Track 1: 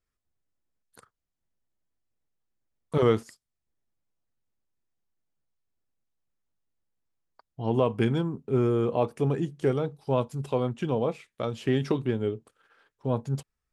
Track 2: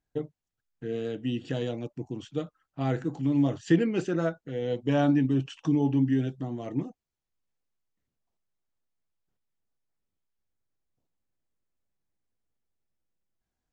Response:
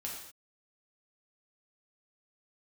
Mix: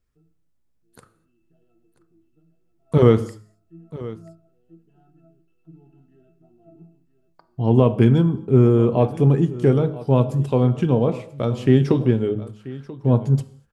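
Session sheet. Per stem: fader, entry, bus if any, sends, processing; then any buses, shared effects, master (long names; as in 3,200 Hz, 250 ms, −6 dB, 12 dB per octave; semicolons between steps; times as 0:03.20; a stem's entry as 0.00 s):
+1.5 dB, 0.00 s, send −11 dB, echo send −16.5 dB, de-essing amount 95%; low-shelf EQ 390 Hz +10 dB; hum removal 105.5 Hz, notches 15
0:05.46 −16 dB → 0:05.86 −6 dB, 0.00 s, send −5.5 dB, echo send −8 dB, gap after every zero crossing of 0.1 ms; resonances in every octave E, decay 0.25 s; automatic ducking −16 dB, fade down 0.60 s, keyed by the first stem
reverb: on, pre-delay 3 ms
echo: single-tap delay 985 ms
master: no processing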